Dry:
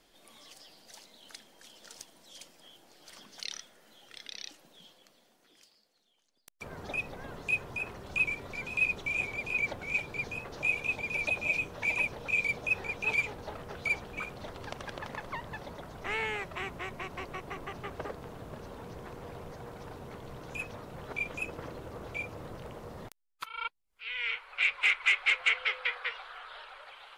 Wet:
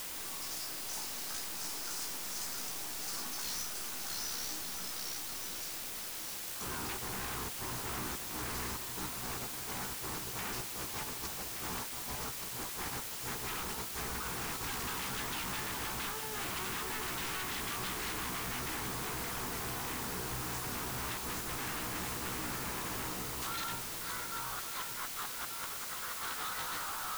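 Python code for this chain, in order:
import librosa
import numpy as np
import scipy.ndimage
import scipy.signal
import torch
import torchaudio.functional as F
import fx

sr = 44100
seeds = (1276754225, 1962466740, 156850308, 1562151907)

y = fx.comb_fb(x, sr, f0_hz=62.0, decay_s=0.28, harmonics='all', damping=0.0, mix_pct=100)
y = y + 10.0 ** (-5.5 / 20.0) * np.pad(y, (int(672 * sr / 1000.0), 0))[:len(y)]
y = fx.over_compress(y, sr, threshold_db=-45.0, ratio=-0.5)
y = scipy.signal.sosfilt(scipy.signal.cheby1(2, 1.0, [1300.0, 5300.0], 'bandstop', fs=sr, output='sos'), y)
y = fx.low_shelf(y, sr, hz=370.0, db=-6.0)
y = fx.fold_sine(y, sr, drive_db=19, ceiling_db=-30.0)
y = fx.peak_eq(y, sr, hz=580.0, db=-13.5, octaves=0.54)
y = y + 10.0 ** (-8.5 / 20.0) * np.pad(y, (int(1175 * sr / 1000.0), 0))[:len(y)]
y = fx.quant_dither(y, sr, seeds[0], bits=6, dither='triangular')
y = y * librosa.db_to_amplitude(-6.0)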